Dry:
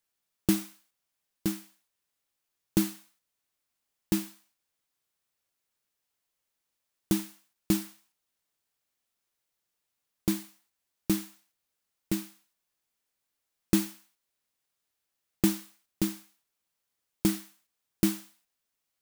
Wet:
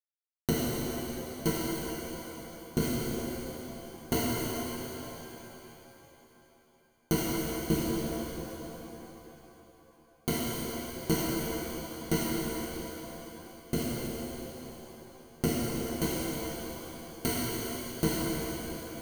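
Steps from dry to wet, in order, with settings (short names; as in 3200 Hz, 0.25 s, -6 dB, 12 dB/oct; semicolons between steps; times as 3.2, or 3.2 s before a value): cycle switcher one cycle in 3, inverted; ripple EQ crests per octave 1.9, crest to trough 17 dB; compressor, threshold -27 dBFS, peak gain reduction 10.5 dB; rotary speaker horn 8 Hz, later 1 Hz, at 3.15; sample gate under -40 dBFS; shimmer reverb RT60 3.6 s, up +7 st, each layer -8 dB, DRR -6.5 dB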